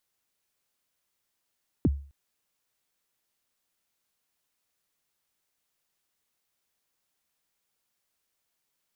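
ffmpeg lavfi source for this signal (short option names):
-f lavfi -i "aevalsrc='0.158*pow(10,-3*t/0.41)*sin(2*PI*(370*0.034/log(70/370)*(exp(log(70/370)*min(t,0.034)/0.034)-1)+70*max(t-0.034,0)))':d=0.26:s=44100"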